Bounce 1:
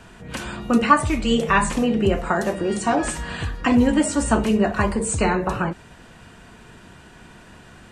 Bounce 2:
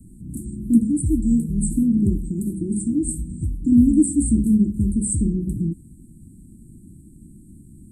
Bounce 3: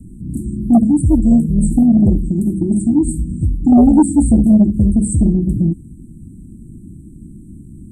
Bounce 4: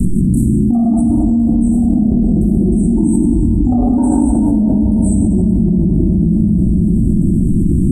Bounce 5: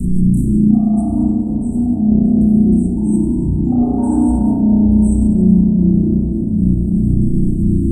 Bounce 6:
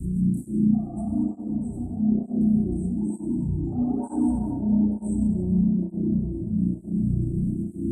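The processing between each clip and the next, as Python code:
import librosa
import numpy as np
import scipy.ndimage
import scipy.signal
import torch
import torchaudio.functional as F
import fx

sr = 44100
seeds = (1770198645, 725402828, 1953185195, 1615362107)

y1 = scipy.signal.sosfilt(scipy.signal.cheby1(5, 1.0, [320.0, 8200.0], 'bandstop', fs=sr, output='sos'), x)
y1 = F.gain(torch.from_numpy(y1), 4.0).numpy()
y2 = fx.high_shelf(y1, sr, hz=4200.0, db=-11.5)
y2 = fx.fold_sine(y2, sr, drive_db=5, ceiling_db=-4.5)
y3 = fx.room_shoebox(y2, sr, seeds[0], volume_m3=210.0, walls='hard', distance_m=1.0)
y3 = fx.env_flatten(y3, sr, amount_pct=100)
y3 = F.gain(torch.from_numpy(y3), -16.5).numpy()
y4 = fx.rev_spring(y3, sr, rt60_s=1.1, pass_ms=(33,), chirp_ms=25, drr_db=-4.0)
y4 = F.gain(torch.from_numpy(y4), -7.5).numpy()
y5 = fx.flanger_cancel(y4, sr, hz=1.1, depth_ms=4.9)
y5 = F.gain(torch.from_numpy(y5), -8.0).numpy()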